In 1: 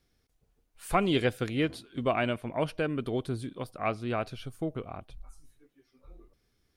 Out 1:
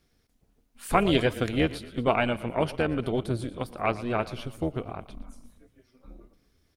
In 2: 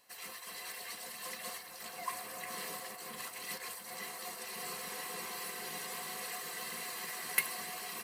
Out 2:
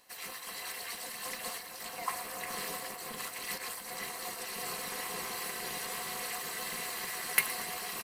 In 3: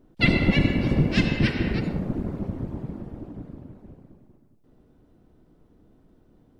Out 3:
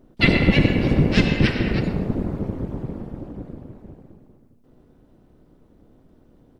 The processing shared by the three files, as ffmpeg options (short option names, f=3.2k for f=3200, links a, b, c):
-filter_complex "[0:a]tremolo=f=240:d=0.667,asplit=6[a][b][c][d][e][f];[b]adelay=116,afreqshift=-30,volume=-17dB[g];[c]adelay=232,afreqshift=-60,volume=-21.7dB[h];[d]adelay=348,afreqshift=-90,volume=-26.5dB[i];[e]adelay=464,afreqshift=-120,volume=-31.2dB[j];[f]adelay=580,afreqshift=-150,volume=-35.9dB[k];[a][g][h][i][j][k]amix=inputs=6:normalize=0,volume=6.5dB"